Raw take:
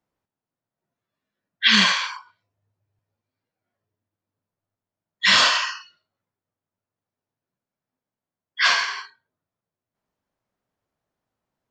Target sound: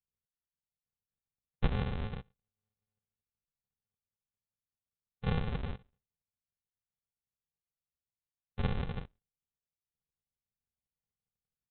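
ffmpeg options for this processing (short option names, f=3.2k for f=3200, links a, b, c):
-af "afwtdn=0.0158,acompressor=threshold=-29dB:ratio=5,aresample=8000,acrusher=samples=25:mix=1:aa=0.000001,aresample=44100"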